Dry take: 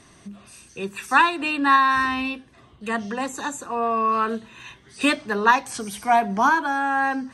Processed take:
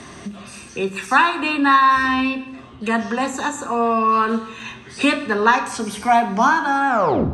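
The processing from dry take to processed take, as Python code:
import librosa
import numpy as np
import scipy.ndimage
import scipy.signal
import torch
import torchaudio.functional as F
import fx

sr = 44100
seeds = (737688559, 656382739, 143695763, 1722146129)

y = fx.tape_stop_end(x, sr, length_s=0.45)
y = scipy.signal.sosfilt(scipy.signal.butter(2, 8700.0, 'lowpass', fs=sr, output='sos'), y)
y = fx.rev_fdn(y, sr, rt60_s=0.79, lf_ratio=1.25, hf_ratio=0.85, size_ms=77.0, drr_db=7.5)
y = fx.band_squash(y, sr, depth_pct=40)
y = F.gain(torch.from_numpy(y), 3.0).numpy()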